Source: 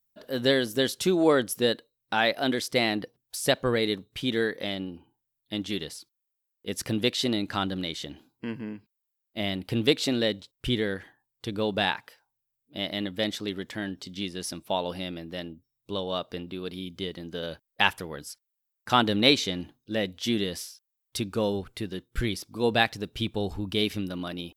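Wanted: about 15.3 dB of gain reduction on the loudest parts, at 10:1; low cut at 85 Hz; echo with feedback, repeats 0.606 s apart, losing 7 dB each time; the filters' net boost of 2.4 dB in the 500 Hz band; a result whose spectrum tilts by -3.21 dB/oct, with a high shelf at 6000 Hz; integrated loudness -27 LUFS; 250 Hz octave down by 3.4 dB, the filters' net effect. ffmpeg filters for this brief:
-af "highpass=85,equalizer=f=250:t=o:g=-6,equalizer=f=500:t=o:g=4.5,highshelf=f=6k:g=7.5,acompressor=threshold=-30dB:ratio=10,aecho=1:1:606|1212|1818|2424|3030:0.447|0.201|0.0905|0.0407|0.0183,volume=8.5dB"

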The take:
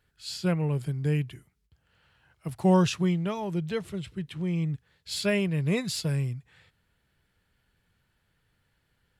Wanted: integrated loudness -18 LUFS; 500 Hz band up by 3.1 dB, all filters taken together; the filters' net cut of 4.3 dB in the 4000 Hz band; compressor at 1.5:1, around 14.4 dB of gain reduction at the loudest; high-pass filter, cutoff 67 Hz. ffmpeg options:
-af "highpass=67,equalizer=f=500:t=o:g=4,equalizer=f=4k:t=o:g=-5.5,acompressor=threshold=-57dB:ratio=1.5,volume=22dB"

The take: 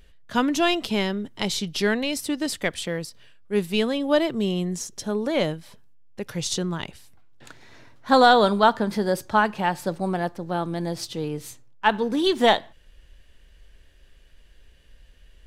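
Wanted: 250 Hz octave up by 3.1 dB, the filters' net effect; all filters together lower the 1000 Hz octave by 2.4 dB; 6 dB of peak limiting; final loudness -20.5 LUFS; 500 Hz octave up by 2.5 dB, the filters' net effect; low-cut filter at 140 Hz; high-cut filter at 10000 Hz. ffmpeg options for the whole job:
-af "highpass=140,lowpass=10k,equalizer=f=250:t=o:g=4,equalizer=f=500:t=o:g=3.5,equalizer=f=1k:t=o:g=-5.5,volume=3dB,alimiter=limit=-6dB:level=0:latency=1"

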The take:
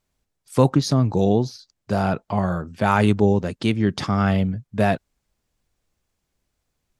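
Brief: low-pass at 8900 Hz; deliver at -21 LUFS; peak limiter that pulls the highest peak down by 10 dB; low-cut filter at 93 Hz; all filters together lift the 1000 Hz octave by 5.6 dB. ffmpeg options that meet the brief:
-af "highpass=93,lowpass=8.9k,equalizer=f=1k:t=o:g=7.5,volume=2dB,alimiter=limit=-8dB:level=0:latency=1"

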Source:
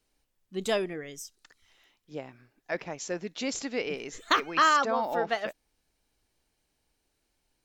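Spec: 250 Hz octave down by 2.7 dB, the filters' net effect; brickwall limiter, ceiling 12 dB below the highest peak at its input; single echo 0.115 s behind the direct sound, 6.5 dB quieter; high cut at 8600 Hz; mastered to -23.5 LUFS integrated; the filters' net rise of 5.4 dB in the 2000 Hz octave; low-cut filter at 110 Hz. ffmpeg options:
-af "highpass=110,lowpass=8.6k,equalizer=f=250:t=o:g=-3.5,equalizer=f=2k:t=o:g=7,alimiter=limit=-18dB:level=0:latency=1,aecho=1:1:115:0.473,volume=7.5dB"

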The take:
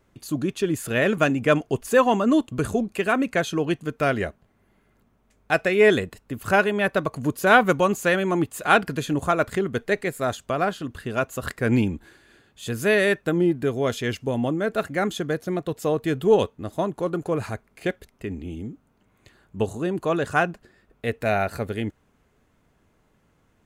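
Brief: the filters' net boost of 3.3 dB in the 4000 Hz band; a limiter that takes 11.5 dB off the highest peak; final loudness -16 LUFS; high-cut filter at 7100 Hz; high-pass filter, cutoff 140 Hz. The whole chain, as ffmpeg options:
-af "highpass=140,lowpass=7.1k,equalizer=f=4k:t=o:g=4.5,volume=9.5dB,alimiter=limit=-3dB:level=0:latency=1"

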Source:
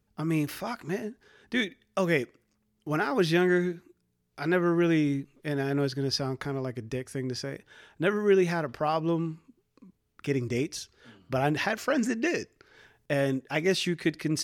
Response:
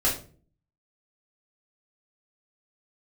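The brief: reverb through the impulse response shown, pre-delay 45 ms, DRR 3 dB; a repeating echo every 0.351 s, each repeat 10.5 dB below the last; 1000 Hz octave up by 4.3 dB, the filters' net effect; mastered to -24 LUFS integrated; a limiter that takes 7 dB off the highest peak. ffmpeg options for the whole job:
-filter_complex "[0:a]equalizer=f=1k:t=o:g=6,alimiter=limit=-17.5dB:level=0:latency=1,aecho=1:1:351|702|1053:0.299|0.0896|0.0269,asplit=2[a][b];[1:a]atrim=start_sample=2205,adelay=45[c];[b][c]afir=irnorm=-1:irlink=0,volume=-14.5dB[d];[a][d]amix=inputs=2:normalize=0,volume=3dB"

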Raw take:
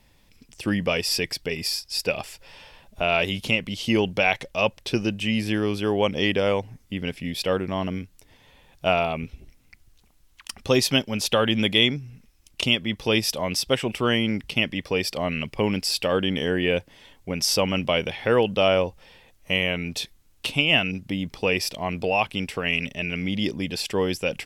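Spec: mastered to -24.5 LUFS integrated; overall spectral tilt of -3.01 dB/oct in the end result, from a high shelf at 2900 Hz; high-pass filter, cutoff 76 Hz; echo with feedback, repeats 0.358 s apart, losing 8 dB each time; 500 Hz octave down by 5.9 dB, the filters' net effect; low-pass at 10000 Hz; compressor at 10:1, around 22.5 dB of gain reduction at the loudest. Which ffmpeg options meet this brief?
-af "highpass=76,lowpass=10k,equalizer=f=500:t=o:g=-7.5,highshelf=f=2.9k:g=8,acompressor=threshold=-35dB:ratio=10,aecho=1:1:358|716|1074|1432|1790:0.398|0.159|0.0637|0.0255|0.0102,volume=13.5dB"

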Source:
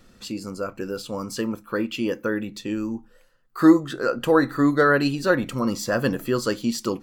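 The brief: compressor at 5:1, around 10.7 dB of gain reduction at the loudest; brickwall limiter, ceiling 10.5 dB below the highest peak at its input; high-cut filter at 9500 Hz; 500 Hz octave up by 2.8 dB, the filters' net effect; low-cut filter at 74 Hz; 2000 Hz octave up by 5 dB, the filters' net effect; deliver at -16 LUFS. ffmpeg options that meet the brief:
-af "highpass=74,lowpass=9.5k,equalizer=f=500:t=o:g=3,equalizer=f=2k:t=o:g=7,acompressor=threshold=-20dB:ratio=5,volume=14.5dB,alimiter=limit=-5.5dB:level=0:latency=1"

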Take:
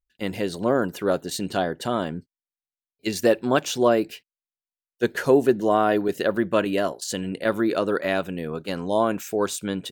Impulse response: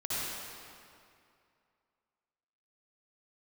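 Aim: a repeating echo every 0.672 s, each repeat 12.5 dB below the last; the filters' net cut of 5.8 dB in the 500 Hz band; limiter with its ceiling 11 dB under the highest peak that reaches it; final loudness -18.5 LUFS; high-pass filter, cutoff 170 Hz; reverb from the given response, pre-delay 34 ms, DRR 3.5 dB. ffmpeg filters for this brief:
-filter_complex "[0:a]highpass=170,equalizer=f=500:t=o:g=-7.5,alimiter=limit=-19.5dB:level=0:latency=1,aecho=1:1:672|1344|2016:0.237|0.0569|0.0137,asplit=2[a][b];[1:a]atrim=start_sample=2205,adelay=34[c];[b][c]afir=irnorm=-1:irlink=0,volume=-10dB[d];[a][d]amix=inputs=2:normalize=0,volume=12dB"

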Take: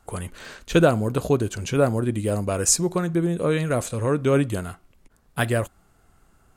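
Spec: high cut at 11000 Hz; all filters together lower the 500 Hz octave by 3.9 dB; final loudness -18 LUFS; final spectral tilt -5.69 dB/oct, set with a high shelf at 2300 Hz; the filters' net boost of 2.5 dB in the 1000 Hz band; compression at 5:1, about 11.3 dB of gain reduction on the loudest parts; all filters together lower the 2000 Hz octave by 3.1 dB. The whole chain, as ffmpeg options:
-af "lowpass=11k,equalizer=f=500:t=o:g=-6.5,equalizer=f=1k:t=o:g=9,equalizer=f=2k:t=o:g=-6,highshelf=f=2.3k:g=-5.5,acompressor=threshold=-27dB:ratio=5,volume=14dB"

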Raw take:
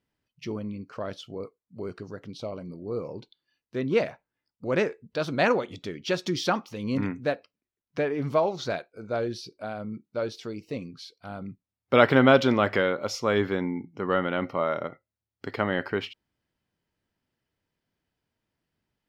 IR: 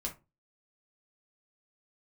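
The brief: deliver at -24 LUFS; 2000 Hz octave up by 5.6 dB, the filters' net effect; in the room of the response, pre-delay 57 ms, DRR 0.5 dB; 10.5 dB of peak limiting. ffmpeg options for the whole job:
-filter_complex "[0:a]equalizer=f=2k:t=o:g=7.5,alimiter=limit=-10.5dB:level=0:latency=1,asplit=2[a][b];[1:a]atrim=start_sample=2205,adelay=57[c];[b][c]afir=irnorm=-1:irlink=0,volume=-1.5dB[d];[a][d]amix=inputs=2:normalize=0,volume=0.5dB"

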